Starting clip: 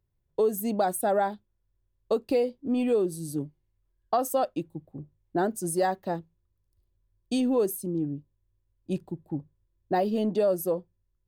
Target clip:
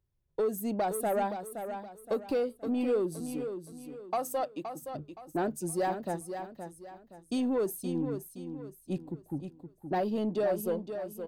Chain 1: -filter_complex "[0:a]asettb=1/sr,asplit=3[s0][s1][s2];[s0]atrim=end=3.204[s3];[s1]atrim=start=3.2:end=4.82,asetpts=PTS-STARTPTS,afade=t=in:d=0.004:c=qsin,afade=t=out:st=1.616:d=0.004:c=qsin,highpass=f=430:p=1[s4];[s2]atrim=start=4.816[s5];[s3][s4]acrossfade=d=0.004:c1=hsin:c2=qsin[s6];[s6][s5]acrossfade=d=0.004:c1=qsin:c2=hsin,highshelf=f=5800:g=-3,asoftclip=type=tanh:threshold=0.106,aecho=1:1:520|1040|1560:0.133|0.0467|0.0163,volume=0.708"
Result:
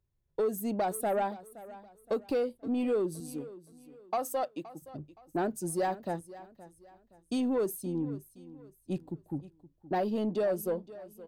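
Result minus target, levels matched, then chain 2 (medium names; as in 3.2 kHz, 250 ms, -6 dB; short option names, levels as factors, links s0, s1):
echo-to-direct -9 dB
-filter_complex "[0:a]asettb=1/sr,asplit=3[s0][s1][s2];[s0]atrim=end=3.204[s3];[s1]atrim=start=3.2:end=4.82,asetpts=PTS-STARTPTS,afade=t=in:d=0.004:c=qsin,afade=t=out:st=1.616:d=0.004:c=qsin,highpass=f=430:p=1[s4];[s2]atrim=start=4.816[s5];[s3][s4]acrossfade=d=0.004:c1=hsin:c2=qsin[s6];[s6][s5]acrossfade=d=0.004:c1=qsin:c2=hsin,highshelf=f=5800:g=-3,asoftclip=type=tanh:threshold=0.106,aecho=1:1:520|1040|1560|2080:0.376|0.132|0.046|0.0161,volume=0.708"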